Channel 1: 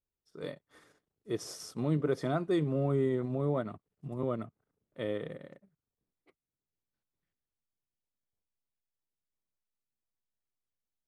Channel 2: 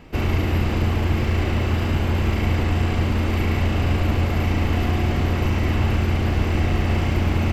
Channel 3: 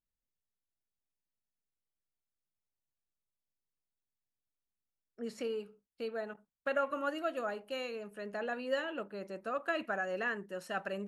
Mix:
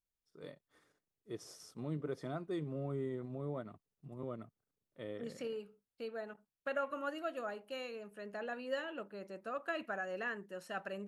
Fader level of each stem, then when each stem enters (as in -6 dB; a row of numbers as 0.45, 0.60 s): -10.0 dB, off, -4.5 dB; 0.00 s, off, 0.00 s